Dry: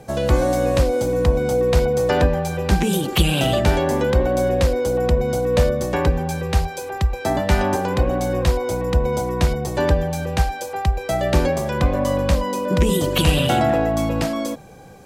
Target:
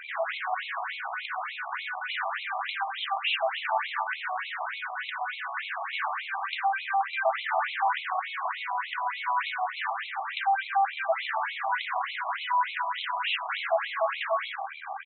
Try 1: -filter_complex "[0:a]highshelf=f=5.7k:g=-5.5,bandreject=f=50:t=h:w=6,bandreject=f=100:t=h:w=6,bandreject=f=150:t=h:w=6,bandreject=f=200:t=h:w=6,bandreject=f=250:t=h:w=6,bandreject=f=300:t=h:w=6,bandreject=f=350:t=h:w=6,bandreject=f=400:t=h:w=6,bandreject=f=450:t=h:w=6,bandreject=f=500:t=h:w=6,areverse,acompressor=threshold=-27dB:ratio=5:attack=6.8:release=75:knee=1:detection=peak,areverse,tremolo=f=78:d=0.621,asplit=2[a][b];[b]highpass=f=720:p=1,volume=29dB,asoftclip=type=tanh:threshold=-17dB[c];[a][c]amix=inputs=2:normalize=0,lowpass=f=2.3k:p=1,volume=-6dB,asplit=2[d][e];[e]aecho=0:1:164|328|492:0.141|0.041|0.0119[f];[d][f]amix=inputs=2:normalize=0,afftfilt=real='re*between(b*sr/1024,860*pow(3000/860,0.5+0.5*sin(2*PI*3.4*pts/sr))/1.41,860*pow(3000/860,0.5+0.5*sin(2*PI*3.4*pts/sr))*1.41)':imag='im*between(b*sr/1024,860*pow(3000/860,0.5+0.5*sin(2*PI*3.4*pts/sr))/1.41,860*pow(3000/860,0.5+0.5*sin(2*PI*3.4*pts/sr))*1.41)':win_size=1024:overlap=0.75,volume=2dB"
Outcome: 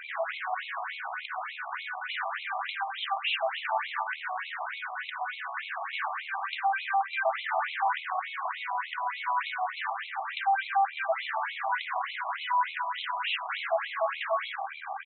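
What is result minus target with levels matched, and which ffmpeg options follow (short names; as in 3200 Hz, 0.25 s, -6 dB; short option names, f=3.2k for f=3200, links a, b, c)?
compressor: peak gain reduction +8 dB
-filter_complex "[0:a]highshelf=f=5.7k:g=-5.5,bandreject=f=50:t=h:w=6,bandreject=f=100:t=h:w=6,bandreject=f=150:t=h:w=6,bandreject=f=200:t=h:w=6,bandreject=f=250:t=h:w=6,bandreject=f=300:t=h:w=6,bandreject=f=350:t=h:w=6,bandreject=f=400:t=h:w=6,bandreject=f=450:t=h:w=6,bandreject=f=500:t=h:w=6,areverse,acompressor=threshold=-17dB:ratio=5:attack=6.8:release=75:knee=1:detection=peak,areverse,tremolo=f=78:d=0.621,asplit=2[a][b];[b]highpass=f=720:p=1,volume=29dB,asoftclip=type=tanh:threshold=-17dB[c];[a][c]amix=inputs=2:normalize=0,lowpass=f=2.3k:p=1,volume=-6dB,asplit=2[d][e];[e]aecho=0:1:164|328|492:0.141|0.041|0.0119[f];[d][f]amix=inputs=2:normalize=0,afftfilt=real='re*between(b*sr/1024,860*pow(3000/860,0.5+0.5*sin(2*PI*3.4*pts/sr))/1.41,860*pow(3000/860,0.5+0.5*sin(2*PI*3.4*pts/sr))*1.41)':imag='im*between(b*sr/1024,860*pow(3000/860,0.5+0.5*sin(2*PI*3.4*pts/sr))/1.41,860*pow(3000/860,0.5+0.5*sin(2*PI*3.4*pts/sr))*1.41)':win_size=1024:overlap=0.75,volume=2dB"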